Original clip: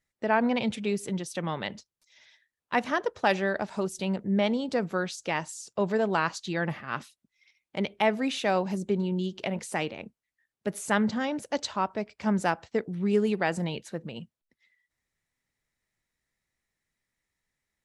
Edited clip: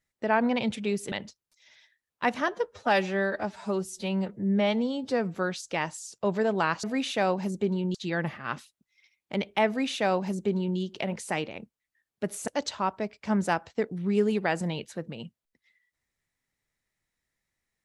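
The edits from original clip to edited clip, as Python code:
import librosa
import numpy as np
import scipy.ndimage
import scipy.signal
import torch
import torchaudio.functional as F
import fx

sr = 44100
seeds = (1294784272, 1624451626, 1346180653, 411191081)

y = fx.edit(x, sr, fx.cut(start_s=1.12, length_s=0.5),
    fx.stretch_span(start_s=2.98, length_s=1.91, factor=1.5),
    fx.duplicate(start_s=8.11, length_s=1.11, to_s=6.38),
    fx.cut(start_s=10.91, length_s=0.53), tone=tone)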